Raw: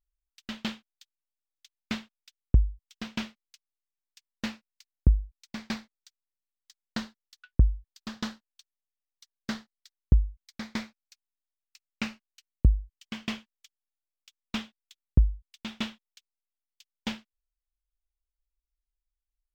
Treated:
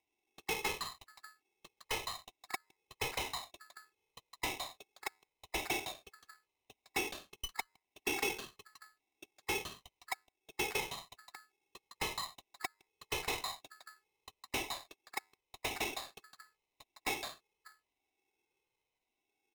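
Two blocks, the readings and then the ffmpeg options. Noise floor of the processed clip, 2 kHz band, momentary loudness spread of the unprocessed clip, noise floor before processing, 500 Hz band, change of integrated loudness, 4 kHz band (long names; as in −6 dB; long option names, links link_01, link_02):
below −85 dBFS, +3.0 dB, 16 LU, below −85 dBFS, +4.0 dB, −7.5 dB, +0.5 dB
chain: -filter_complex "[0:a]afftfilt=real='re*pow(10,10/40*sin(2*PI*(1.4*log(max(b,1)*sr/1024/100)/log(2)-(-0.89)*(pts-256)/sr)))':imag='im*pow(10,10/40*sin(2*PI*(1.4*log(max(b,1)*sr/1024/100)/log(2)-(-0.89)*(pts-256)/sr)))':win_size=1024:overlap=0.75,highshelf=frequency=2600:width_type=q:width=3:gain=-8,aecho=1:1:1.9:0.75,adynamicequalizer=threshold=0.00141:dfrequency=5500:dqfactor=1.3:tfrequency=5500:tqfactor=1.3:attack=5:release=100:ratio=0.375:range=2:mode=cutabove:tftype=bell,acompressor=threshold=-26dB:ratio=6,acrossover=split=160|2500[link_01][link_02][link_03];[link_03]adelay=160[link_04];[link_01]adelay=590[link_05];[link_05][link_02][link_04]amix=inputs=3:normalize=0,acrossover=split=200|3900[link_06][link_07][link_08];[link_06]acompressor=threshold=-36dB:ratio=4[link_09];[link_07]acompressor=threshold=-43dB:ratio=4[link_10];[link_08]acompressor=threshold=-57dB:ratio=4[link_11];[link_09][link_10][link_11]amix=inputs=3:normalize=0,aresample=16000,volume=33dB,asoftclip=hard,volume=-33dB,aresample=44100,asplit=3[link_12][link_13][link_14];[link_12]bandpass=frequency=730:width_type=q:width=8,volume=0dB[link_15];[link_13]bandpass=frequency=1090:width_type=q:width=8,volume=-6dB[link_16];[link_14]bandpass=frequency=2440:width_type=q:width=8,volume=-9dB[link_17];[link_15][link_16][link_17]amix=inputs=3:normalize=0,asplit=2[link_18][link_19];[link_19]highpass=frequency=720:poles=1,volume=19dB,asoftclip=type=tanh:threshold=-41dB[link_20];[link_18][link_20]amix=inputs=2:normalize=0,lowpass=frequency=1700:poles=1,volume=-6dB,aeval=exprs='val(0)*sgn(sin(2*PI*1500*n/s))':channel_layout=same,volume=17dB"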